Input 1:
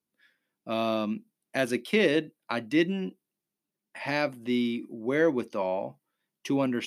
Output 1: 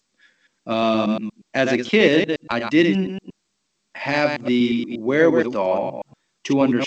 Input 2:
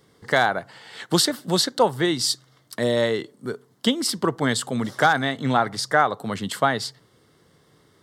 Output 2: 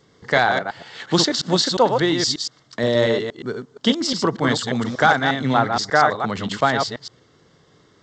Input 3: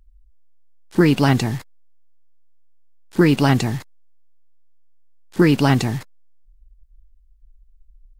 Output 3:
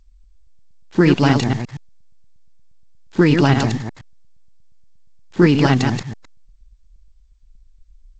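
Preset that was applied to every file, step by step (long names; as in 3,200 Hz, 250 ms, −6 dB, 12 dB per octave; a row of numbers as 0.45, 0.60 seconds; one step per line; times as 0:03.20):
delay that plays each chunk backwards 118 ms, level −5 dB
G.722 64 kbit/s 16,000 Hz
normalise the peak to −1.5 dBFS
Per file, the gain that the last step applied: +7.5, +2.0, +1.0 decibels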